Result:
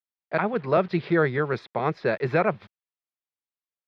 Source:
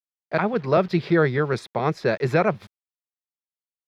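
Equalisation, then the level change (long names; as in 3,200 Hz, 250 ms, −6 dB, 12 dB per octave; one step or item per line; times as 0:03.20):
high-frequency loss of the air 290 metres
spectral tilt +1.5 dB per octave
0.0 dB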